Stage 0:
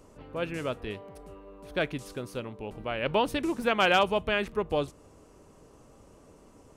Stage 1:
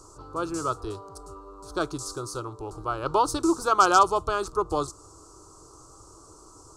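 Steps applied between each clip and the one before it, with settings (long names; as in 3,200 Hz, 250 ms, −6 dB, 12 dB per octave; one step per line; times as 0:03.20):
drawn EQ curve 120 Hz 0 dB, 230 Hz −17 dB, 330 Hz +4 dB, 560 Hz −8 dB, 1,300 Hz +10 dB, 1,900 Hz −25 dB, 3,100 Hz −13 dB, 4,400 Hz +8 dB, 7,700 Hz +13 dB, 14,000 Hz −4 dB
level +4 dB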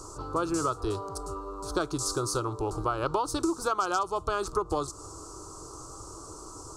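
downward compressor 12 to 1, threshold −31 dBFS, peak gain reduction 18.5 dB
level +6.5 dB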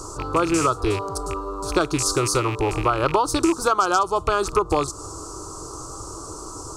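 loose part that buzzes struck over −36 dBFS, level −29 dBFS
level +8.5 dB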